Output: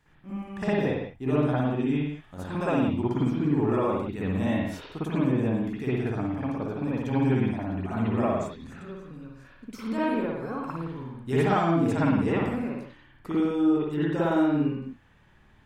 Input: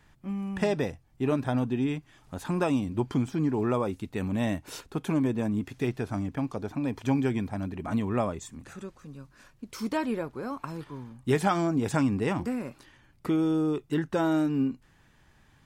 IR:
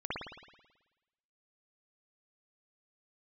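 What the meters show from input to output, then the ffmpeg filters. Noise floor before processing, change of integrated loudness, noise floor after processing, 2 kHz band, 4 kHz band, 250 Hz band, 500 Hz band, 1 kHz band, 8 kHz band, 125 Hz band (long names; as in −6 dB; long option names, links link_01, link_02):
−61 dBFS, +2.5 dB, −57 dBFS, +2.0 dB, −0.5 dB, +2.5 dB, +2.5 dB, +2.5 dB, can't be measured, +3.0 dB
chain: -filter_complex "[1:a]atrim=start_sample=2205,afade=type=out:start_time=0.3:duration=0.01,atrim=end_sample=13671[link_01];[0:a][link_01]afir=irnorm=-1:irlink=0,volume=-2.5dB"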